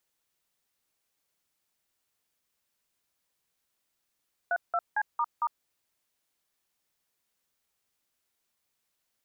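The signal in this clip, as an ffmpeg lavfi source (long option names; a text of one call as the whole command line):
ffmpeg -f lavfi -i "aevalsrc='0.0447*clip(min(mod(t,0.227),0.053-mod(t,0.227))/0.002,0,1)*(eq(floor(t/0.227),0)*(sin(2*PI*697*mod(t,0.227))+sin(2*PI*1477*mod(t,0.227)))+eq(floor(t/0.227),1)*(sin(2*PI*697*mod(t,0.227))+sin(2*PI*1336*mod(t,0.227)))+eq(floor(t/0.227),2)*(sin(2*PI*852*mod(t,0.227))+sin(2*PI*1633*mod(t,0.227)))+eq(floor(t/0.227),3)*(sin(2*PI*941*mod(t,0.227))+sin(2*PI*1209*mod(t,0.227)))+eq(floor(t/0.227),4)*(sin(2*PI*941*mod(t,0.227))+sin(2*PI*1209*mod(t,0.227))))':duration=1.135:sample_rate=44100" out.wav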